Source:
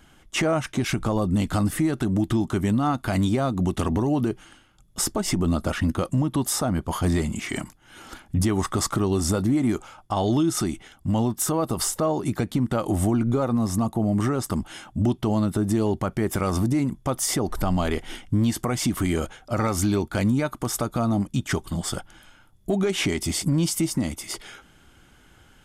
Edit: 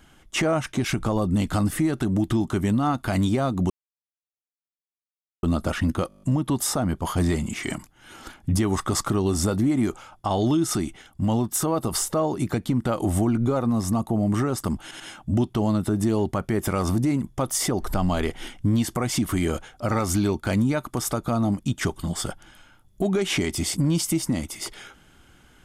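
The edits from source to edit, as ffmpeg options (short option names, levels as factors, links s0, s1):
-filter_complex "[0:a]asplit=12[s0][s1][s2][s3][s4][s5][s6][s7][s8][s9][s10][s11];[s0]atrim=end=3.7,asetpts=PTS-STARTPTS,afade=t=out:st=3.696:d=0.004:c=hsin[s12];[s1]atrim=start=3.7:end=5.43,asetpts=PTS-STARTPTS,volume=0[s13];[s2]atrim=start=5.43:end=6.102,asetpts=PTS-STARTPTS,afade=t=in:d=0.004:c=hsin[s14];[s3]atrim=start=6.078:end=6.102[s15];[s4]atrim=start=6.078:end=6.102[s16];[s5]atrim=start=6.078:end=6.102[s17];[s6]atrim=start=6.078:end=6.102[s18];[s7]atrim=start=6.078:end=6.102[s19];[s8]atrim=start=6.078:end=6.102[s20];[s9]atrim=start=6.078:end=14.772[s21];[s10]atrim=start=14.678:end=14.772[s22];[s11]atrim=start=14.678[s23];[s12][s13][s14]concat=n=3:v=0:a=1[s24];[s24][s15]acrossfade=d=0.004:c1=hsin:c2=hsin[s25];[s25][s16]acrossfade=d=0.004:c1=hsin:c2=hsin[s26];[s26][s17]acrossfade=d=0.004:c1=hsin:c2=hsin[s27];[s27][s18]acrossfade=d=0.004:c1=hsin:c2=hsin[s28];[s28][s19]acrossfade=d=0.004:c1=hsin:c2=hsin[s29];[s29][s20]acrossfade=d=0.004:c1=hsin:c2=hsin[s30];[s30][s21]acrossfade=d=0.004:c1=hsin:c2=hsin[s31];[s31][s22]acrossfade=d=0.004:c1=hsin:c2=hsin[s32];[s32][s23]acrossfade=d=0.004:c1=hsin:c2=hsin"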